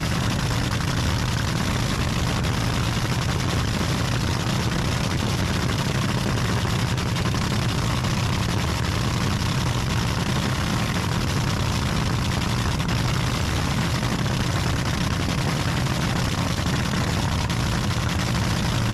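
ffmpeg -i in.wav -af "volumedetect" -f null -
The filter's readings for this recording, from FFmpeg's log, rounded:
mean_volume: -22.8 dB
max_volume: -10.3 dB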